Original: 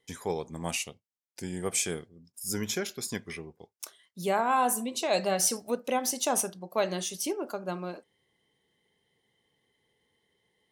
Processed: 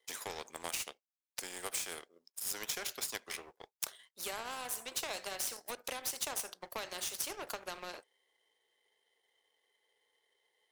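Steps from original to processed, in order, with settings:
high-pass filter 450 Hz 24 dB per octave
downward compressor 6 to 1, threshold −34 dBFS, peak gain reduction 12.5 dB
power curve on the samples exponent 1.4
every bin compressed towards the loudest bin 2 to 1
level +9.5 dB

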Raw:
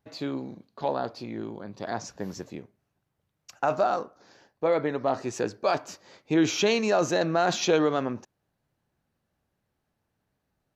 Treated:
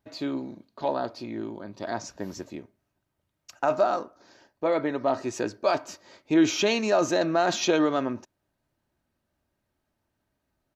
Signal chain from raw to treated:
comb filter 3.2 ms, depth 37%

